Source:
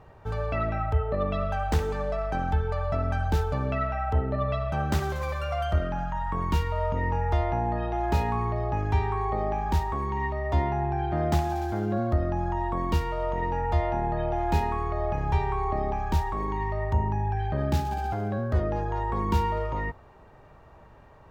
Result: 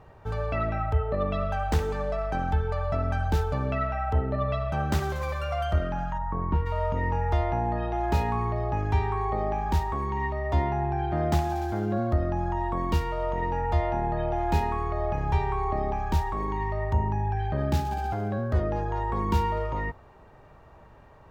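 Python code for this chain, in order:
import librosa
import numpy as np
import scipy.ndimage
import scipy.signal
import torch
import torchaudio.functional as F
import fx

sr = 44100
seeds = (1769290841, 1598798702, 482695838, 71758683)

y = fx.lowpass(x, sr, hz=1200.0, slope=12, at=(6.17, 6.65), fade=0.02)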